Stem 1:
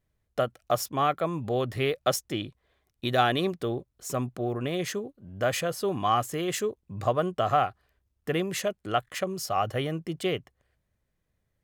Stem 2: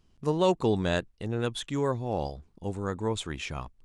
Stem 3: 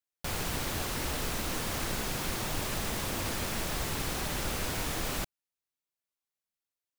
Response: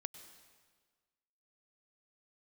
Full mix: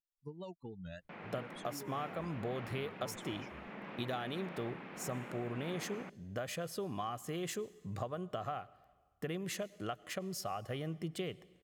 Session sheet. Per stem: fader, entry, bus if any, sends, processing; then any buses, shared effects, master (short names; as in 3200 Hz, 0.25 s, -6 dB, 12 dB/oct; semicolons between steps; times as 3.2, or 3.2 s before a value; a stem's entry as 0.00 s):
-9.5 dB, 0.95 s, no bus, send -5 dB, compressor 6:1, threshold -30 dBFS, peak gain reduction 12 dB
-8.5 dB, 0.00 s, bus A, no send, per-bin expansion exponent 3
-4.0 dB, 0.85 s, bus A, no send, Chebyshev band-pass 180–2400 Hz, order 3; tremolo 1.6 Hz, depth 52%
bus A: 0.0 dB, vibrato 3.1 Hz 56 cents; compressor 16:1, threshold -44 dBFS, peak gain reduction 14.5 dB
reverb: on, RT60 1.5 s, pre-delay 92 ms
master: bell 180 Hz +4 dB 0.66 oct